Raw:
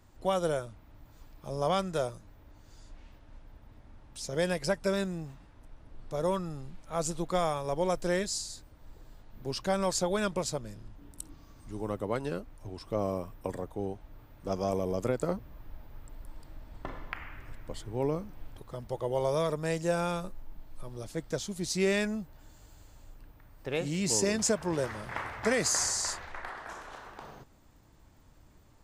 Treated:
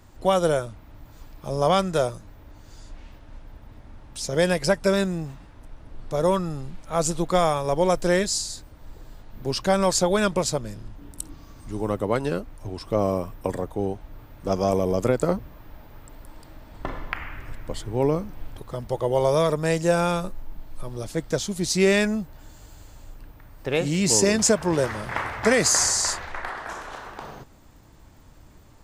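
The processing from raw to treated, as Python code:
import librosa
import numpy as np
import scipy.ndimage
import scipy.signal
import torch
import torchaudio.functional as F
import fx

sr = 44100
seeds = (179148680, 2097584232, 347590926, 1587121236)

y = fx.low_shelf(x, sr, hz=93.0, db=-9.0, at=(15.48, 16.79))
y = y * librosa.db_to_amplitude(8.5)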